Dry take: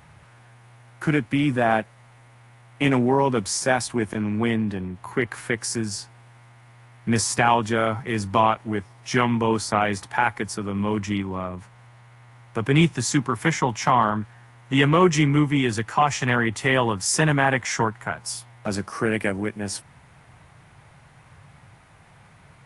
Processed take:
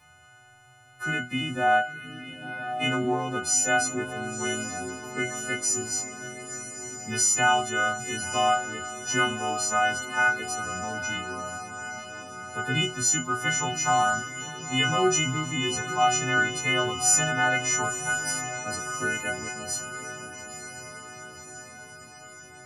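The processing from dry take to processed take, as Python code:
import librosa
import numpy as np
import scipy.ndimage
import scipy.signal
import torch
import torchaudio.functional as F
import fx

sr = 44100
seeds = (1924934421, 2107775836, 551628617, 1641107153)

y = fx.freq_snap(x, sr, grid_st=3)
y = fx.resonator_bank(y, sr, root=40, chord='fifth', decay_s=0.29)
y = fx.echo_diffused(y, sr, ms=953, feedback_pct=63, wet_db=-10.0)
y = y * 10.0 ** (2.5 / 20.0)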